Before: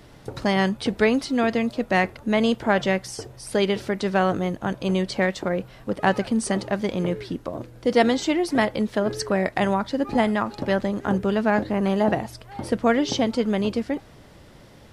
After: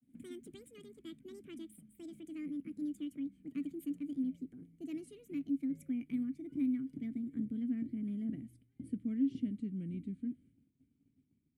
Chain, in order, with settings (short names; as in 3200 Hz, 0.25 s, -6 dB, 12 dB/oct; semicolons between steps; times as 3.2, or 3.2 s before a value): speed glide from 188% -> 70%; EQ curve 140 Hz 0 dB, 460 Hz -20 dB, 3400 Hz -28 dB, 5400 Hz -25 dB, 9300 Hz +3 dB; in parallel at -10.5 dB: soft clip -28 dBFS, distortion -16 dB; on the sum: vowel filter i; expander -60 dBFS; gain +3 dB